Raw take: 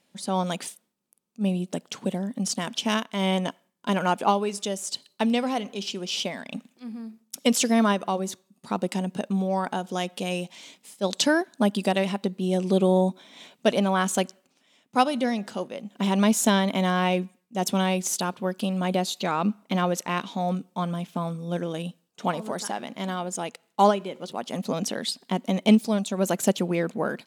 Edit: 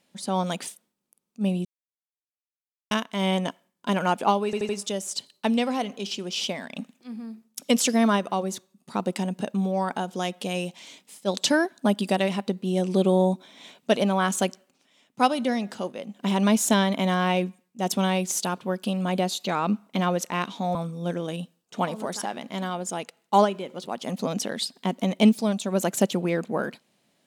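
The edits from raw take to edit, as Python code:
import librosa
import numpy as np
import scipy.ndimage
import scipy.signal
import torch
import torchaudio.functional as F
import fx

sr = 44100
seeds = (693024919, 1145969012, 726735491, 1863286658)

y = fx.edit(x, sr, fx.silence(start_s=1.65, length_s=1.26),
    fx.stutter(start_s=4.45, slice_s=0.08, count=4),
    fx.cut(start_s=20.51, length_s=0.7), tone=tone)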